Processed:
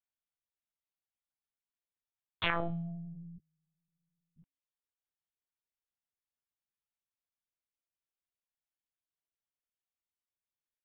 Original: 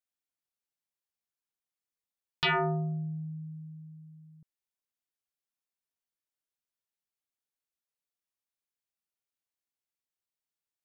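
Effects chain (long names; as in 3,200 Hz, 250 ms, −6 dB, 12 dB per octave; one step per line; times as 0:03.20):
0:03.38–0:04.38: tuned comb filter 430 Hz, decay 0.16 s, harmonics all, mix 100%
reverb reduction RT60 0.77 s
one-pitch LPC vocoder at 8 kHz 170 Hz
hum removal 279.2 Hz, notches 29
level −3.5 dB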